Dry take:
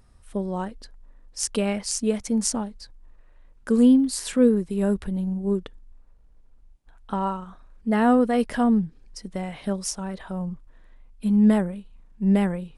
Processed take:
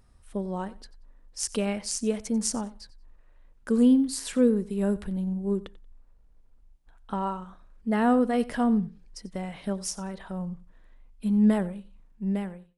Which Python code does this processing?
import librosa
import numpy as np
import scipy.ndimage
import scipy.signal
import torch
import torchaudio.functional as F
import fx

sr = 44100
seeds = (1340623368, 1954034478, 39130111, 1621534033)

y = fx.fade_out_tail(x, sr, length_s=0.81)
y = fx.echo_feedback(y, sr, ms=91, feedback_pct=20, wet_db=-19)
y = y * 10.0 ** (-3.5 / 20.0)